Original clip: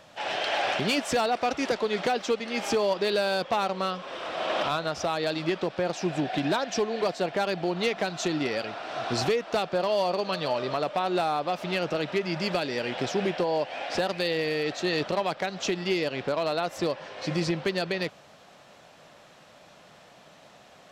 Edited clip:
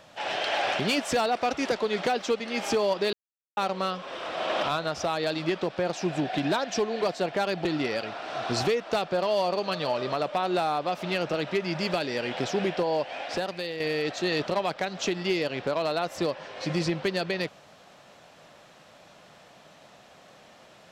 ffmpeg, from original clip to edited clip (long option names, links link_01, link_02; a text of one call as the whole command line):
ffmpeg -i in.wav -filter_complex "[0:a]asplit=5[link_01][link_02][link_03][link_04][link_05];[link_01]atrim=end=3.13,asetpts=PTS-STARTPTS,afade=type=out:start_time=3.126:duration=0.004:curve=hsin[link_06];[link_02]atrim=start=3.13:end=3.57,asetpts=PTS-STARTPTS,volume=0[link_07];[link_03]atrim=start=3.57:end=7.652,asetpts=PTS-STARTPTS,afade=type=in:duration=0.004:curve=hsin[link_08];[link_04]atrim=start=8.258:end=14.41,asetpts=PTS-STARTPTS,afade=type=out:start_time=5.392:duration=0.76:silence=0.398107[link_09];[link_05]atrim=start=14.41,asetpts=PTS-STARTPTS,afade=type=in:duration=0.004:curve=hsin:silence=0.398107[link_10];[link_06][link_07][link_08]concat=n=3:v=0:a=1[link_11];[link_09][link_10]concat=n=2:v=0:a=1[link_12];[link_11][link_12]acrossfade=duration=0.004:curve1=hsin:curve2=hsin" out.wav